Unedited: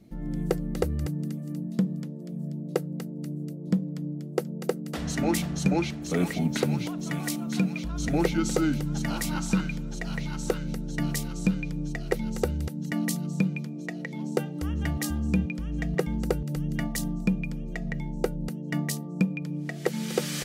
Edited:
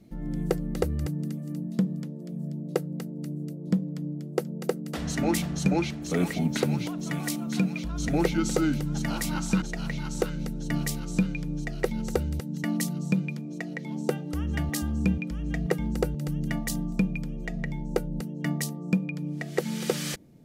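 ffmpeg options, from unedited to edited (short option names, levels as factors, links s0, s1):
-filter_complex "[0:a]asplit=2[s0][s1];[s0]atrim=end=9.622[s2];[s1]atrim=start=9.898[s3];[s2][s3]acrossfade=d=0.004:c1=hsin:c2=hsin"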